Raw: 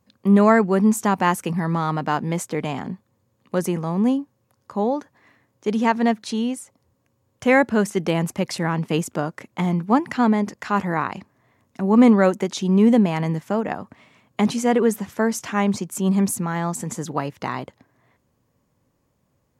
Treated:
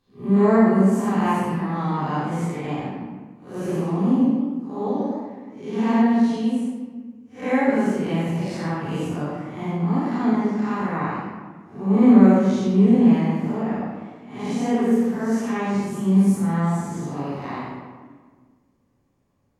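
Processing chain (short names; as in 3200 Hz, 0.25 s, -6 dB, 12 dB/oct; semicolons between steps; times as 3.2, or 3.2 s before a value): time blur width 0.162 s; high shelf 9700 Hz -5.5 dB; reverb RT60 1.6 s, pre-delay 3 ms, DRR -6 dB; 3.58–6.03 warbling echo 99 ms, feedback 34%, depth 112 cents, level -3.5 dB; gain -6.5 dB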